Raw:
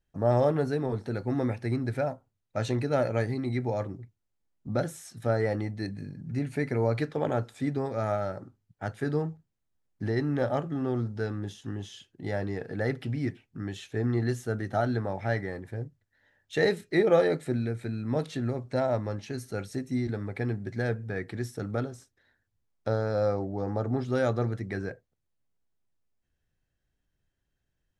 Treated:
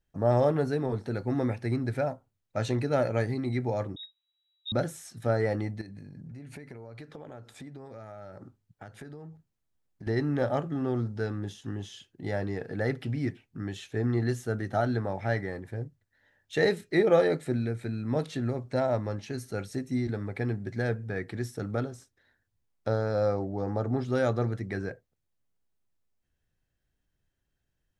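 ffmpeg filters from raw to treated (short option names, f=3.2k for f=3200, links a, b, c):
-filter_complex "[0:a]asettb=1/sr,asplit=3[a][b][c];[a]atrim=end=3.964[d];[b]atrim=start=3.96:end=4.72,asetpts=PTS-STARTPTS,afade=t=in:d=0.004:c=qsin,afade=t=out:st=0.756:d=0.004:c=qsin,lowpass=f=3.3k:t=q:w=0.5098,lowpass=f=3.3k:t=q:w=0.6013,lowpass=f=3.3k:t=q:w=0.9,lowpass=f=3.3k:t=q:w=2.563,afreqshift=-3900[e];[c]atrim=start=4.716[f];[d][e]acrossfade=d=0.004:c1=hsin:c2=qsin[g];[g][f]acrossfade=d=0.004:c1=qsin:c2=hsin,asettb=1/sr,asplit=3[h][i][j];[h]atrim=end=5.814[k];[i]atrim=start=5.81:end=10.07,asetpts=PTS-STARTPTS,afade=t=in:d=0.004:c=qsin,afade=t=out:st=4.256:d=0.004:c=qsin,acompressor=threshold=-40dB:ratio=12:attack=3.2:release=140:knee=1:detection=peak[l];[j]atrim=start=10.066[m];[k][l]acrossfade=d=0.004:c1=hsin:c2=qsin[n];[n][m]acrossfade=d=0.004:c1=qsin:c2=hsin"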